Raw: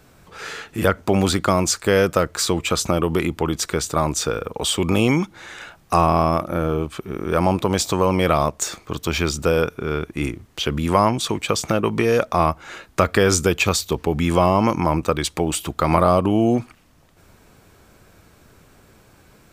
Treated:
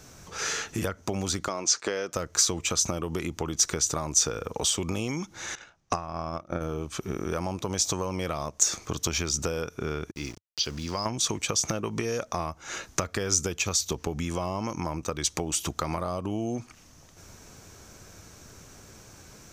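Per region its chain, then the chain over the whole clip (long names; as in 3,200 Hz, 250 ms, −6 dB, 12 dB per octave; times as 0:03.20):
0:01.48–0:02.13: band-pass filter 300–5,100 Hz + downward expander −38 dBFS
0:05.55–0:06.61: high-frequency loss of the air 88 metres + transient designer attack +11 dB, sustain −5 dB + expander for the loud parts, over −32 dBFS
0:10.11–0:11.06: transistor ladder low-pass 5,000 Hz, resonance 80% + centre clipping without the shift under −44.5 dBFS
whole clip: parametric band 95 Hz +2.5 dB; downward compressor 10 to 1, threshold −27 dBFS; parametric band 6,100 Hz +15 dB 0.55 octaves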